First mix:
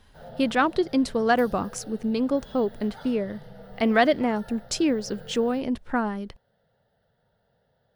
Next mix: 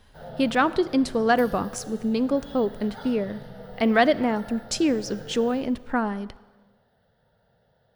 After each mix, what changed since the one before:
reverb: on, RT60 1.4 s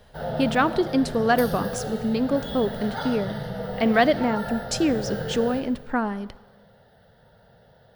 background +10.5 dB

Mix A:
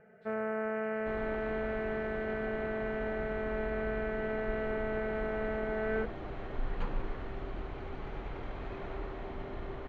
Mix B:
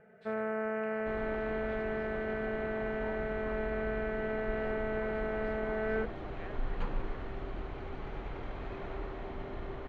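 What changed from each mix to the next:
speech +9.5 dB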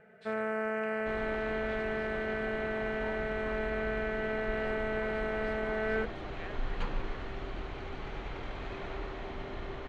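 master: add high shelf 2300 Hz +11 dB

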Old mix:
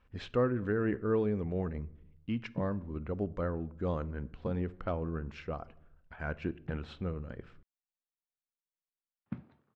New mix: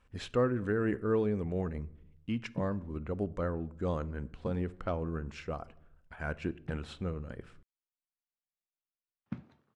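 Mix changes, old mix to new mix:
speech: add LPF 4000 Hz 6 dB/oct; master: remove air absorption 210 m

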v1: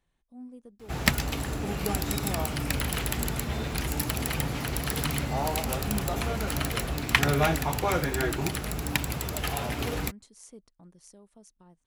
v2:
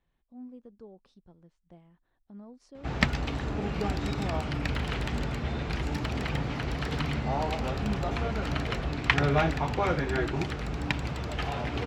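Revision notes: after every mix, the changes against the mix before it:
background: entry +1.95 s; master: add air absorption 160 m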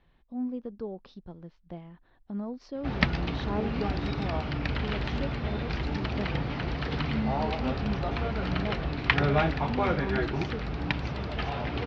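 speech +12.0 dB; master: add steep low-pass 5200 Hz 36 dB/oct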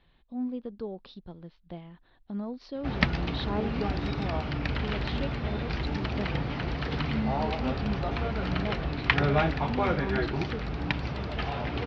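speech: add synth low-pass 4000 Hz, resonance Q 2.4

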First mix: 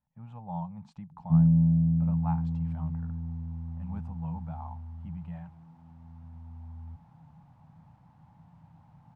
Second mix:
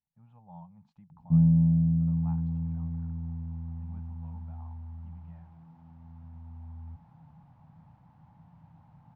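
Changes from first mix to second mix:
speech -12.0 dB; master: add air absorption 100 m

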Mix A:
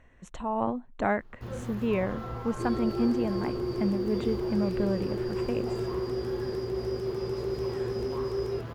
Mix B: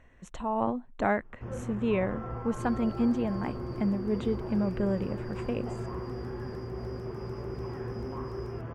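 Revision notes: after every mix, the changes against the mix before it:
first sound: add running mean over 11 samples; second sound -9.5 dB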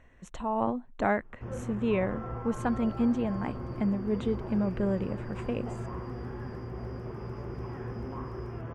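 second sound -6.5 dB

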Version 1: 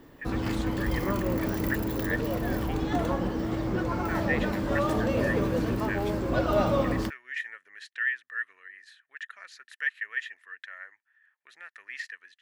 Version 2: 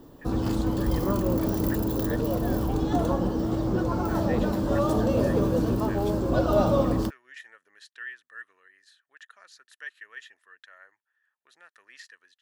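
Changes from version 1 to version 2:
background +3.5 dB; master: add bell 2100 Hz -14 dB 0.93 oct

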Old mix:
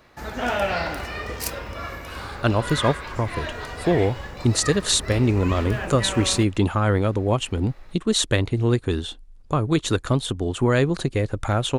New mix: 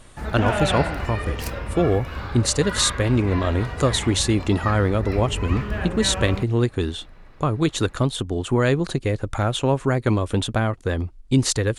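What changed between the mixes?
speech: entry -2.10 s; background: add tone controls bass +7 dB, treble -8 dB

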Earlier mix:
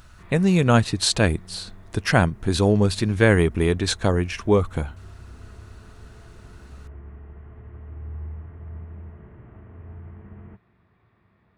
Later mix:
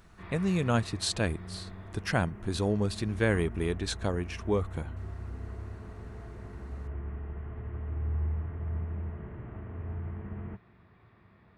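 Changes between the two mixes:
speech -10.0 dB; background +3.5 dB

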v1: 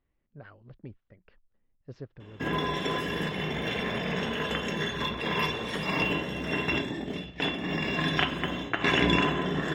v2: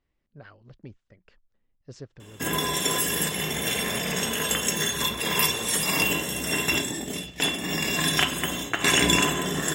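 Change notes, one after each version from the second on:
master: remove air absorption 290 m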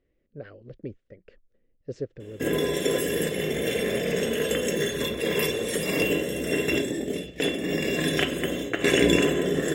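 speech +3.5 dB; master: add EQ curve 180 Hz 0 dB, 510 Hz +10 dB, 910 Hz -12 dB, 1900 Hz -1 dB, 5300 Hz -9 dB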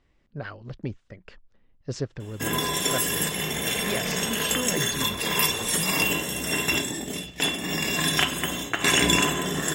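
speech +8.0 dB; master: add EQ curve 180 Hz 0 dB, 510 Hz -10 dB, 910 Hz +12 dB, 1900 Hz +1 dB, 5300 Hz +9 dB

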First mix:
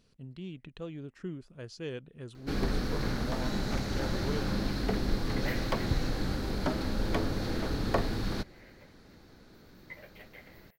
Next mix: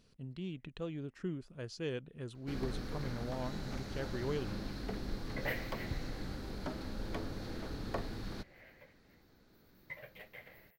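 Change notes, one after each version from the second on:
first sound -10.0 dB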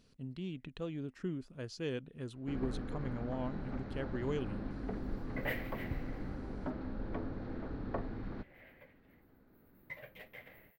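first sound: add LPF 1600 Hz 12 dB/oct; master: add bell 260 Hz +5 dB 0.24 oct

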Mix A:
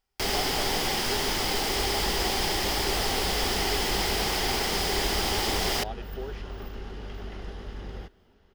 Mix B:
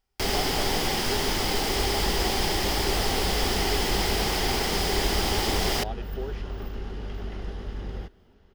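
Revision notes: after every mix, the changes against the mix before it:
master: add low shelf 410 Hz +4.5 dB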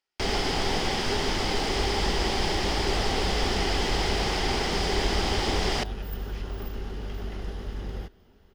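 speech: add Bessel high-pass 1600 Hz; first sound: add air absorption 110 m; master: add high shelf 7800 Hz +9.5 dB

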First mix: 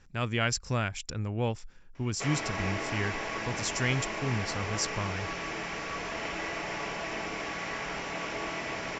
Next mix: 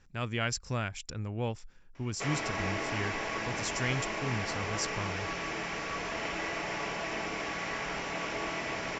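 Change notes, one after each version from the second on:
speech -3.5 dB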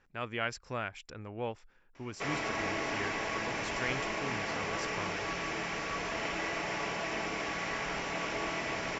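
speech: add tone controls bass -11 dB, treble -14 dB

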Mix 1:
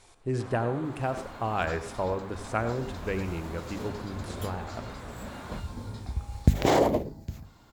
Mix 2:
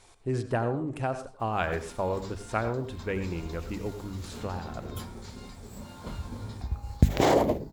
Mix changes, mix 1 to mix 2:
first sound: muted; second sound: entry +0.55 s

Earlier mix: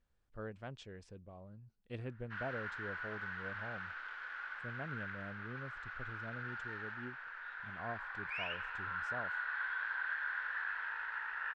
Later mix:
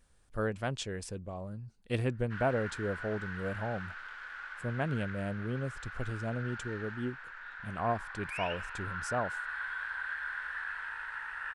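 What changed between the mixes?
speech +12.0 dB; master: remove air absorption 120 m

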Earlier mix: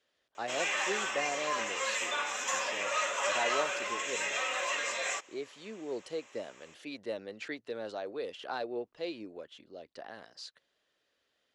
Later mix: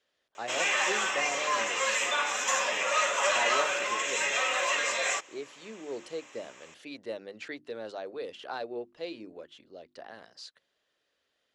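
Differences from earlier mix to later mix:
background +5.0 dB; master: add notches 50/100/150/200/250/300/350 Hz

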